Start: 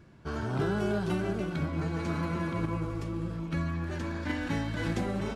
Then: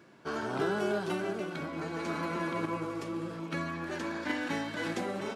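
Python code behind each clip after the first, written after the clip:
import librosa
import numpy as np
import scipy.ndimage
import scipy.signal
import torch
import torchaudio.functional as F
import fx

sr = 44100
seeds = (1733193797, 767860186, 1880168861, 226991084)

y = scipy.signal.sosfilt(scipy.signal.butter(2, 290.0, 'highpass', fs=sr, output='sos'), x)
y = fx.rider(y, sr, range_db=10, speed_s=2.0)
y = y * librosa.db_to_amplitude(1.0)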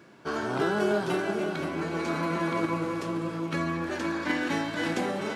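y = fx.doubler(x, sr, ms=24.0, db=-12.0)
y = y + 10.0 ** (-8.5 / 20.0) * np.pad(y, (int(526 * sr / 1000.0), 0))[:len(y)]
y = y * librosa.db_to_amplitude(4.0)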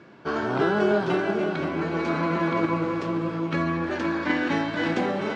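y = fx.air_absorb(x, sr, metres=140.0)
y = y * librosa.db_to_amplitude(4.5)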